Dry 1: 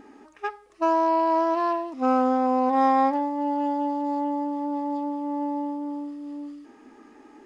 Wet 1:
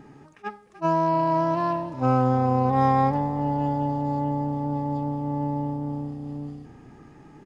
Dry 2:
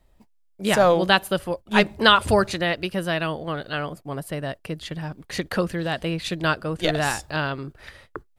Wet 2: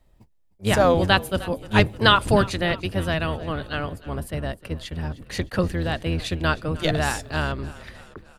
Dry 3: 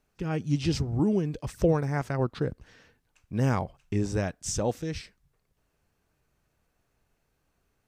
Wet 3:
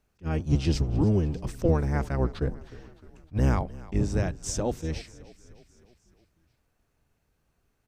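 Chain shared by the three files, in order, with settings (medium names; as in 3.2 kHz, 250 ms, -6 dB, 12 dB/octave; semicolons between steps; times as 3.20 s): octave divider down 1 oct, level +2 dB; frequency-shifting echo 307 ms, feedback 59%, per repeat -31 Hz, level -19 dB; attacks held to a fixed rise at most 430 dB/s; trim -1 dB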